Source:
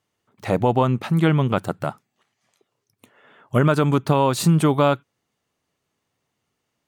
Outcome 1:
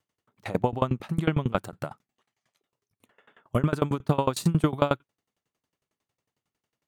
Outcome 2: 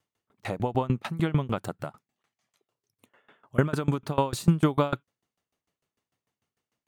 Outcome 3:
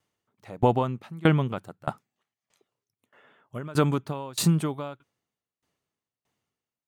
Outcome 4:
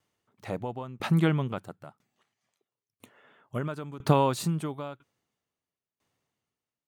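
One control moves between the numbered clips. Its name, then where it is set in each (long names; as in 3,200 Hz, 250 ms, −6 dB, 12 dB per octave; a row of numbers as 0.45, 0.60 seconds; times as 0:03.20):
tremolo with a ramp in dB, speed: 11, 6.7, 1.6, 1 Hertz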